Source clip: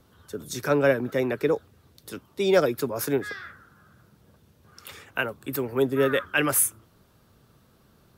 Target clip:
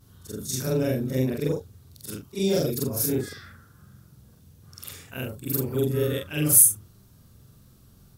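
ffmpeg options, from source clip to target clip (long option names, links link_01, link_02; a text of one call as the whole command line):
ffmpeg -i in.wav -filter_complex "[0:a]afftfilt=real='re':imag='-im':win_size=4096:overlap=0.75,bass=frequency=250:gain=13,treble=frequency=4000:gain=12,acrossover=split=660|2600[link_01][link_02][link_03];[link_02]acompressor=threshold=-46dB:ratio=6[link_04];[link_01][link_04][link_03]amix=inputs=3:normalize=0" out.wav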